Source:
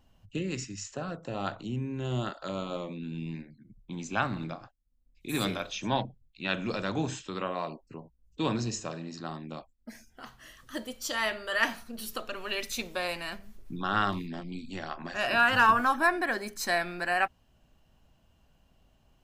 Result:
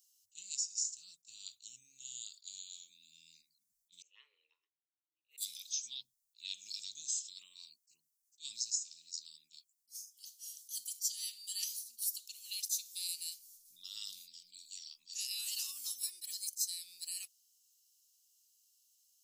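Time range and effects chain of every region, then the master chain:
0:04.02–0:05.38: inverse Chebyshev low-pass filter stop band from 4,100 Hz + frequency shifter +300 Hz
whole clip: inverse Chebyshev high-pass filter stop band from 1,700 Hz, stop band 60 dB; downward compressor 2.5 to 1, threshold −48 dBFS; level that may rise only so fast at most 380 dB per second; level +13 dB

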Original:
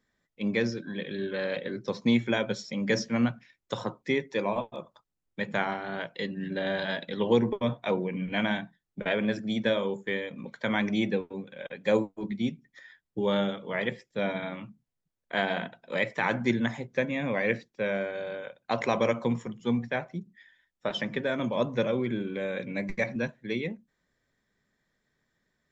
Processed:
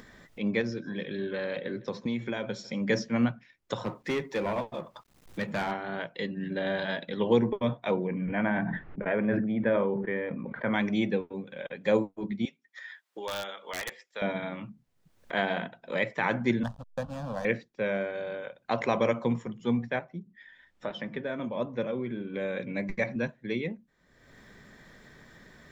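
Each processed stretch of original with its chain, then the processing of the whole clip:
0:00.61–0:02.80: downward compressor, threshold −27 dBFS + repeating echo 155 ms, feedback 42%, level −23 dB
0:03.84–0:05.72: mu-law and A-law mismatch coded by mu + hard clipping −25 dBFS
0:08.07–0:10.74: low-pass filter 2,100 Hz 24 dB per octave + level that may fall only so fast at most 28 dB per second
0:12.45–0:14.22: high-pass filter 890 Hz + wrap-around overflow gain 24 dB
0:16.63–0:17.45: slack as between gear wheels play −28 dBFS + phaser with its sweep stopped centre 880 Hz, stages 4
0:19.99–0:22.34: low-pass filter 4,000 Hz 6 dB per octave + flanger 1.2 Hz, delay 3.2 ms, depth 1.7 ms, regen −77%
whole clip: high-shelf EQ 4,600 Hz −7 dB; upward compression, threshold −33 dBFS

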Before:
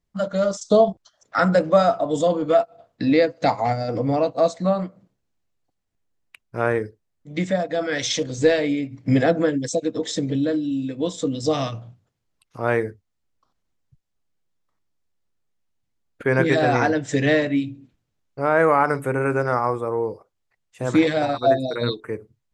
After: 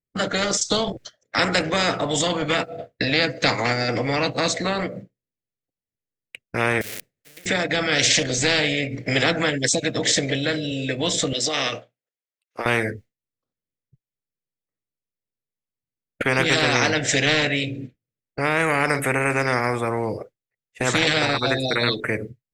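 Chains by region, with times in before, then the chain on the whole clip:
0:06.81–0:07.46: spike at every zero crossing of −25 dBFS + downward compressor 10 to 1, threshold −35 dBFS + every bin compressed towards the loudest bin 10 to 1
0:11.33–0:12.66: high-pass filter 720 Hz + downward compressor 5 to 1, threshold −30 dBFS
whole clip: downward expander −40 dBFS; octave-band graphic EQ 125/250/500/1,000/2,000 Hz +9/+5/+12/−12/+10 dB; every bin compressed towards the loudest bin 4 to 1; level −8.5 dB

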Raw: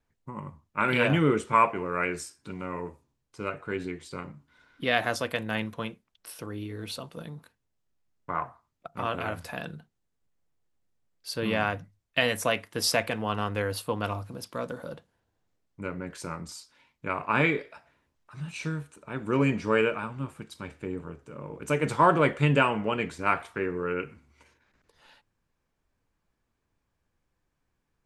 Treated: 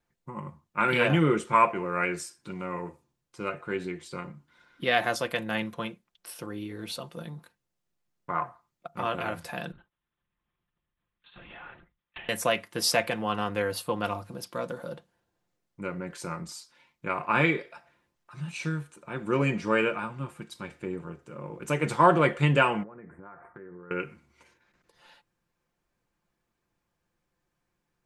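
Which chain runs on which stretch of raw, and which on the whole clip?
0:09.72–0:12.29: downward compressor 16 to 1, threshold −37 dBFS + low shelf with overshoot 690 Hz −8 dB, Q 1.5 + linear-prediction vocoder at 8 kHz whisper
0:22.83–0:23.91: Chebyshev band-stop filter 1,800–8,600 Hz, order 3 + downward compressor 16 to 1, threshold −40 dBFS + high-frequency loss of the air 470 metres
whole clip: low-shelf EQ 62 Hz −9.5 dB; comb filter 5.7 ms, depth 41%

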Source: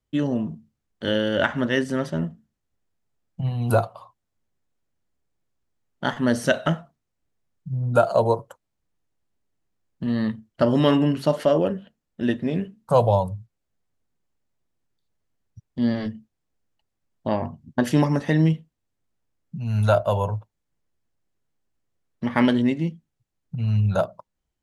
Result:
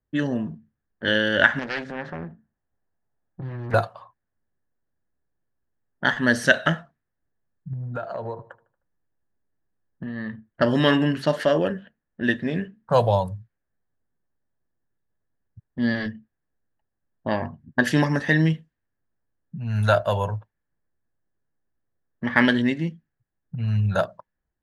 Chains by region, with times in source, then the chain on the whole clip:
0:01.59–0:03.74: parametric band 780 Hz +5 dB 0.9 octaves + downward compressor 2.5 to 1, threshold −30 dBFS + highs frequency-modulated by the lows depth 0.82 ms
0:07.73–0:10.33: downward compressor, threshold −27 dBFS + repeating echo 77 ms, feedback 51%, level −20.5 dB
whole clip: parametric band 1,700 Hz +13.5 dB 0.38 octaves; low-pass that shuts in the quiet parts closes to 1,100 Hz, open at −18.5 dBFS; dynamic equaliser 4,000 Hz, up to +6 dB, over −40 dBFS, Q 0.95; level −1.5 dB

